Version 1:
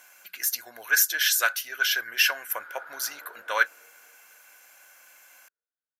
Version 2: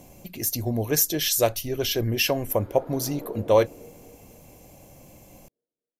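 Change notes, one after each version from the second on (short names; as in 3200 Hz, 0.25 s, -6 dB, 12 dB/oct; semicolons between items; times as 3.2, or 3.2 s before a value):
master: remove resonant high-pass 1500 Hz, resonance Q 13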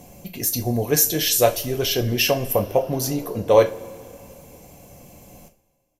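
reverb: on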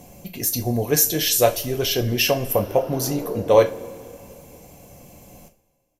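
background +6.0 dB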